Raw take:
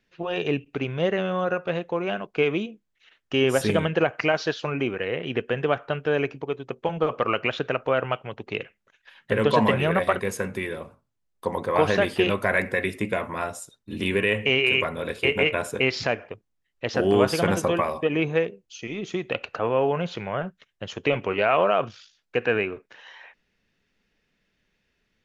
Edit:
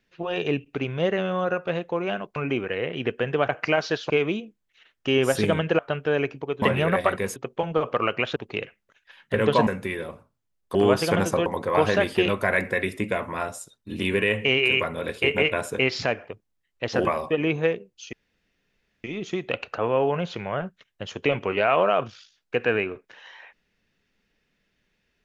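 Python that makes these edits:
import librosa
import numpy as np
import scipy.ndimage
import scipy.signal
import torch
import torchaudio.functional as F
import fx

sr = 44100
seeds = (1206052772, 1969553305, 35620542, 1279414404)

y = fx.edit(x, sr, fx.swap(start_s=2.36, length_s=1.69, other_s=4.66, other_length_s=1.13),
    fx.cut(start_s=7.62, length_s=0.72),
    fx.move(start_s=9.65, length_s=0.74, to_s=6.62),
    fx.move(start_s=17.06, length_s=0.71, to_s=11.47),
    fx.insert_room_tone(at_s=18.85, length_s=0.91), tone=tone)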